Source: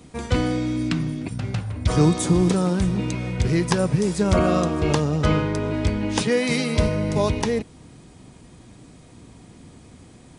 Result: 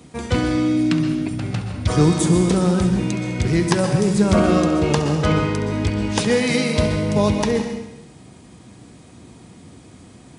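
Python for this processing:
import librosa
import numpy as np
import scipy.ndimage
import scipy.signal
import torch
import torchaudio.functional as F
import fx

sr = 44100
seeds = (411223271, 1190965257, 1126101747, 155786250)

y = scipy.signal.sosfilt(scipy.signal.butter(2, 68.0, 'highpass', fs=sr, output='sos'), x)
y = fx.echo_feedback(y, sr, ms=68, feedback_pct=59, wet_db=-13.0)
y = fx.rev_plate(y, sr, seeds[0], rt60_s=0.77, hf_ratio=1.0, predelay_ms=110, drr_db=7.0)
y = y * librosa.db_to_amplitude(2.0)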